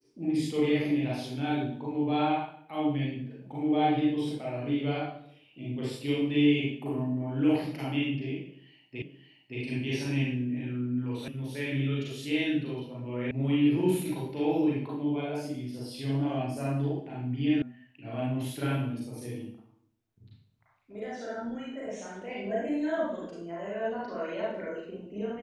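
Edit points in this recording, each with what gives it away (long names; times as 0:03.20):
0:09.02: the same again, the last 0.57 s
0:11.28: cut off before it has died away
0:13.31: cut off before it has died away
0:17.62: cut off before it has died away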